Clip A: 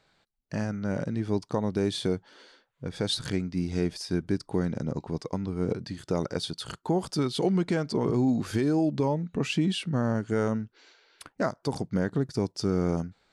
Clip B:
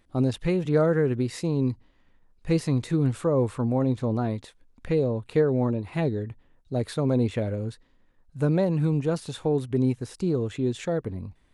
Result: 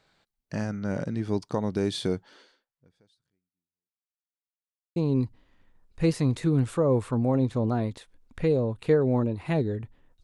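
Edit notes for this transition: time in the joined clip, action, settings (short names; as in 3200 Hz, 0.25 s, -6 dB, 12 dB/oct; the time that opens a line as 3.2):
clip A
2.35–4.28 fade out exponential
4.28–4.96 mute
4.96 switch to clip B from 1.43 s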